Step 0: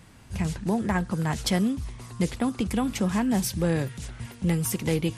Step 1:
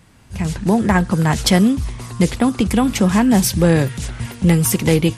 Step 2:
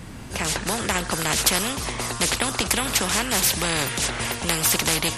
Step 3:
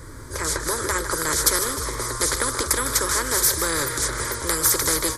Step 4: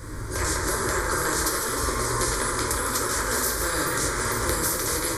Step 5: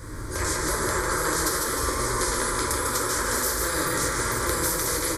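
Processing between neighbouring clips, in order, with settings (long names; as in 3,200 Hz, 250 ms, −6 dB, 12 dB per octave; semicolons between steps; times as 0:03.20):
automatic gain control gain up to 11.5 dB; level +1 dB
low-shelf EQ 380 Hz +6.5 dB; every bin compressed towards the loudest bin 4 to 1; level −3 dB
phaser with its sweep stopped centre 740 Hz, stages 6; on a send: repeating echo 154 ms, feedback 43%, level −11 dB; on the sum: level +3 dB
downward compressor, threshold −26 dBFS, peak gain reduction 12.5 dB; dense smooth reverb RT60 1.9 s, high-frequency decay 0.3×, pre-delay 0 ms, DRR −3.5 dB
single-tap delay 148 ms −6 dB; level −1 dB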